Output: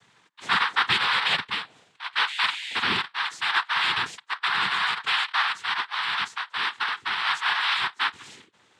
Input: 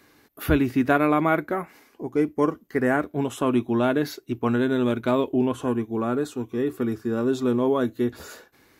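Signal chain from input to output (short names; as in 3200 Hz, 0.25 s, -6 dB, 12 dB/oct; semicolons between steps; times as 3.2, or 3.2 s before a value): four-band scrambler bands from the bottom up 2143; 2.26–2.82 whine 3000 Hz -30 dBFS; noise vocoder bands 6; gain -2.5 dB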